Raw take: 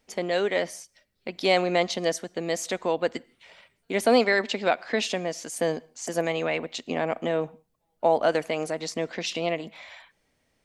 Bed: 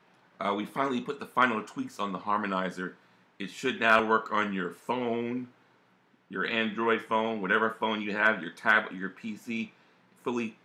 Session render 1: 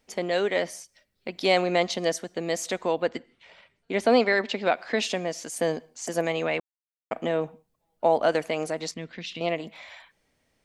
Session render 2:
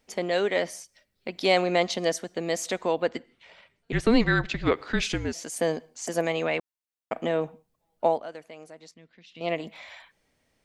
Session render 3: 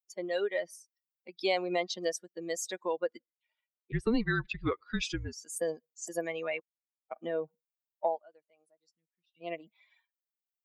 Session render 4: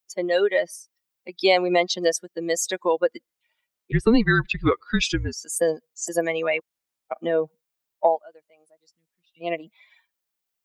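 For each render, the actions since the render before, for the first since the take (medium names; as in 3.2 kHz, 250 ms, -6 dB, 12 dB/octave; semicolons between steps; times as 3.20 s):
3.02–4.75 s: distance through air 72 m; 6.60–7.11 s: mute; 8.91–9.41 s: FFT filter 160 Hz 0 dB, 670 Hz -15 dB, 1.7 kHz -6 dB, 3.7 kHz -4 dB, 5.4 kHz -11 dB, 8.8 kHz -15 dB
3.92–5.33 s: frequency shift -240 Hz; 8.05–9.52 s: dip -16.5 dB, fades 0.19 s
expander on every frequency bin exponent 2; compression 2:1, threshold -29 dBFS, peak gain reduction 7.5 dB
trim +11 dB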